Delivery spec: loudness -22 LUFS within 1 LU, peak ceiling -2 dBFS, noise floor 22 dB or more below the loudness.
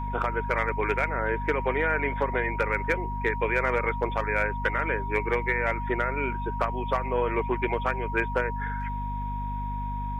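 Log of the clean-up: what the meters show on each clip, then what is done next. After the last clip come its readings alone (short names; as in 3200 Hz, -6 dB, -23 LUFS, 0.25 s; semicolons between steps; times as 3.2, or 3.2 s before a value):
hum 50 Hz; harmonics up to 250 Hz; hum level -30 dBFS; steady tone 950 Hz; tone level -33 dBFS; loudness -27.5 LUFS; peak -11.0 dBFS; loudness target -22.0 LUFS
-> de-hum 50 Hz, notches 5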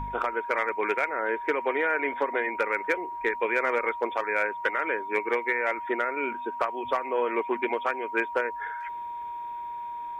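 hum none; steady tone 950 Hz; tone level -33 dBFS
-> notch 950 Hz, Q 30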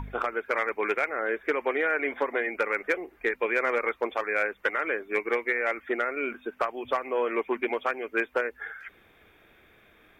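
steady tone none; loudness -28.5 LUFS; peak -13.0 dBFS; loudness target -22.0 LUFS
-> gain +6.5 dB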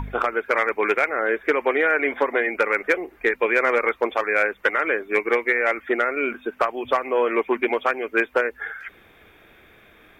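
loudness -22.0 LUFS; peak -6.5 dBFS; noise floor -53 dBFS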